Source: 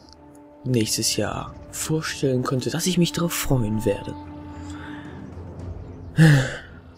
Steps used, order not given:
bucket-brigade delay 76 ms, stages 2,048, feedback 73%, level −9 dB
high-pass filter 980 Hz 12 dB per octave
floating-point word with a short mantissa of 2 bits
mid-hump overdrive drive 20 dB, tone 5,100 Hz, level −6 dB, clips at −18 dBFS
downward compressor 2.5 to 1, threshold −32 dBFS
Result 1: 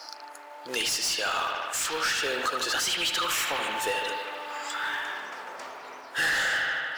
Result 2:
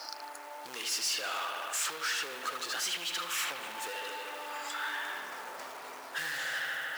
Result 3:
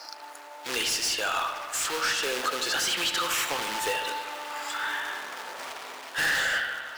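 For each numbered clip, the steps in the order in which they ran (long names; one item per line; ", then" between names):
high-pass filter, then floating-point word with a short mantissa, then bucket-brigade delay, then downward compressor, then mid-hump overdrive
bucket-brigade delay, then mid-hump overdrive, then floating-point word with a short mantissa, then downward compressor, then high-pass filter
floating-point word with a short mantissa, then high-pass filter, then downward compressor, then mid-hump overdrive, then bucket-brigade delay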